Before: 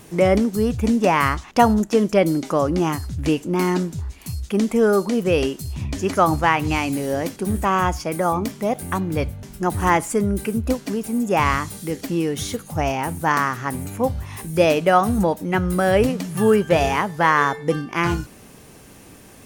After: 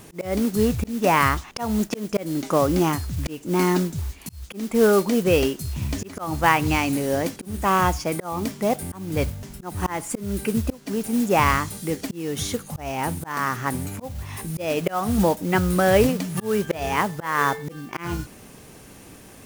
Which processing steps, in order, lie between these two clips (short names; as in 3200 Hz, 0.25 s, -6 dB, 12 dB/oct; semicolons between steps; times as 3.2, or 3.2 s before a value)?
vibrato 2.9 Hz 5.4 cents; modulation noise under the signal 18 dB; auto swell 0.296 s